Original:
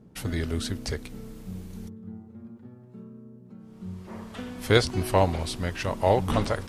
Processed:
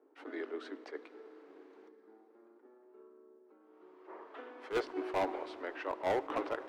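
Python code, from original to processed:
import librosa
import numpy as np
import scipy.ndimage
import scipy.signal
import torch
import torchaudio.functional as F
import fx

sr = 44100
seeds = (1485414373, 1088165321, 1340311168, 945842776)

p1 = scipy.signal.sosfilt(scipy.signal.butter(2, 1800.0, 'lowpass', fs=sr, output='sos'), x)
p2 = 10.0 ** (-17.0 / 20.0) * (np.abs((p1 / 10.0 ** (-17.0 / 20.0) + 3.0) % 4.0 - 2.0) - 1.0)
p3 = p1 + F.gain(torch.from_numpy(p2), -8.0).numpy()
p4 = scipy.signal.sosfilt(scipy.signal.cheby1(6, 3, 280.0, 'highpass', fs=sr, output='sos'), p3)
p5 = np.clip(10.0 ** (20.5 / 20.0) * p4, -1.0, 1.0) / 10.0 ** (20.5 / 20.0)
p6 = fx.rev_plate(p5, sr, seeds[0], rt60_s=4.8, hf_ratio=0.8, predelay_ms=0, drr_db=16.5)
p7 = fx.attack_slew(p6, sr, db_per_s=260.0)
y = F.gain(torch.from_numpy(p7), -6.5).numpy()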